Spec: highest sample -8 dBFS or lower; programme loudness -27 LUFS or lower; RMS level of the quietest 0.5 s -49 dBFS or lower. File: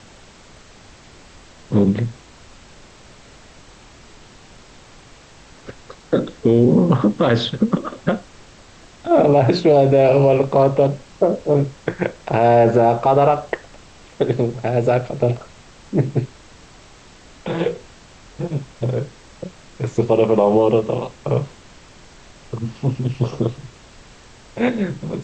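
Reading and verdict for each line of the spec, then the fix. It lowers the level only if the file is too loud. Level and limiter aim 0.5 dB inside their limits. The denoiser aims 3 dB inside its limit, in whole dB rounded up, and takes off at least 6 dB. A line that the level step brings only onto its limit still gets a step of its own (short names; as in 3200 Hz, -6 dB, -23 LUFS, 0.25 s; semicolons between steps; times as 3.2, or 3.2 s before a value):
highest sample -5.0 dBFS: fail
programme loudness -18.0 LUFS: fail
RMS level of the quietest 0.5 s -45 dBFS: fail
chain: gain -9.5 dB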